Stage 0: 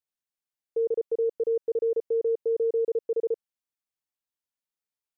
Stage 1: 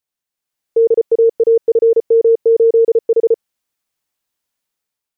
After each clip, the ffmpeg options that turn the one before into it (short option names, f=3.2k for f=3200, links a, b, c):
-af "dynaudnorm=f=150:g=7:m=7.5dB,volume=7dB"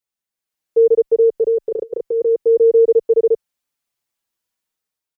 -filter_complex "[0:a]asplit=2[a][b];[b]adelay=5.5,afreqshift=-0.49[c];[a][c]amix=inputs=2:normalize=1"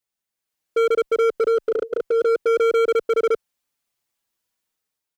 -af "volume=17.5dB,asoftclip=hard,volume=-17.5dB,volume=1.5dB"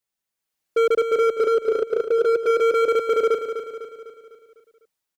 -af "aecho=1:1:251|502|753|1004|1255|1506:0.355|0.177|0.0887|0.0444|0.0222|0.0111"